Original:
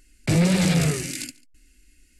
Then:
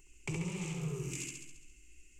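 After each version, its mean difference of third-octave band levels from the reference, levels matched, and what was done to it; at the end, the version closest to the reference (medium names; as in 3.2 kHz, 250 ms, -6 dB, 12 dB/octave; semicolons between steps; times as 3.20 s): 6.0 dB: time-frequency box 0.72–1.12 s, 1.7–11 kHz -8 dB; compression 6:1, threshold -34 dBFS, peak gain reduction 17 dB; rippled EQ curve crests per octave 0.72, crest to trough 15 dB; on a send: flutter echo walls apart 11.7 m, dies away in 0.96 s; on the sum: trim -7.5 dB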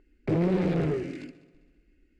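9.5 dB: low-pass 1.8 kHz 12 dB/octave; one-sided clip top -26 dBFS, bottom -15.5 dBFS; peaking EQ 380 Hz +10.5 dB 1.1 oct; on a send: multi-head delay 66 ms, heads second and third, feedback 45%, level -21 dB; on the sum: trim -6 dB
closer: first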